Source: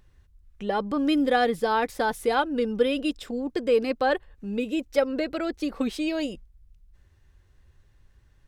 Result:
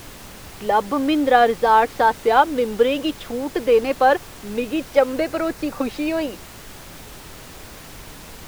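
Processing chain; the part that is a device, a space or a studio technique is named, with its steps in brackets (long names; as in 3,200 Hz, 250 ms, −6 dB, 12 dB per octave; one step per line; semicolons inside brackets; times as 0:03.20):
horn gramophone (band-pass filter 280–3,700 Hz; parametric band 890 Hz +6 dB; tape wow and flutter; pink noise bed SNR 18 dB)
0:05.21–0:06.33: parametric band 3,200 Hz −6 dB 0.26 octaves
level +5.5 dB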